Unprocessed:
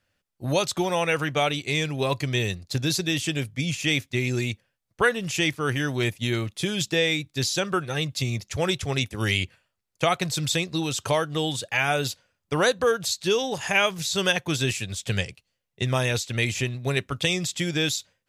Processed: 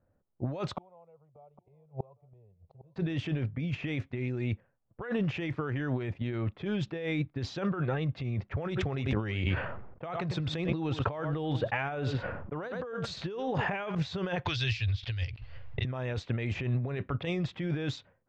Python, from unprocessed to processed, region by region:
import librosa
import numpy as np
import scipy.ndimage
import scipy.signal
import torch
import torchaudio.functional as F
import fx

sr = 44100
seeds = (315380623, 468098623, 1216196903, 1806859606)

y = fx.chain(x, sr, fx.fixed_phaser(hz=690.0, stages=4),
    fx.gate_flip(shuts_db=-26.0, range_db=-34),
    fx.echo_single(ms=807, db=-19.0), at=(0.73, 2.96))
y = fx.chain(y, sr, fx.lowpass(hz=11000.0, slope=12),
    fx.echo_single(ms=98, db=-19.0),
    fx.sustainer(db_per_s=50.0), at=(8.66, 13.95))
y = fx.chain(y, sr, fx.curve_eq(hz=(110.0, 170.0, 620.0, 1300.0, 4900.0, 9600.0), db=(0, -27, -17, -11, 11, -10)),
    fx.pre_swell(db_per_s=39.0), at=(14.45, 15.85))
y = fx.env_lowpass(y, sr, base_hz=790.0, full_db=-19.0)
y = scipy.signal.sosfilt(scipy.signal.butter(2, 1500.0, 'lowpass', fs=sr, output='sos'), y)
y = fx.over_compress(y, sr, threshold_db=-32.0, ratio=-1.0)